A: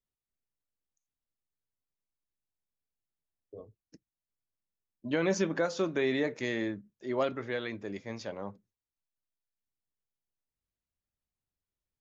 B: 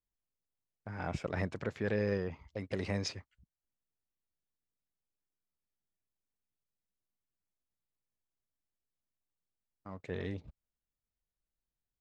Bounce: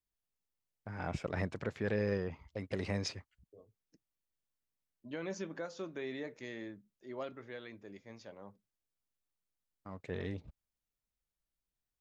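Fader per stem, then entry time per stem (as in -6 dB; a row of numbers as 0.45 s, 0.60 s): -12.0 dB, -1.0 dB; 0.00 s, 0.00 s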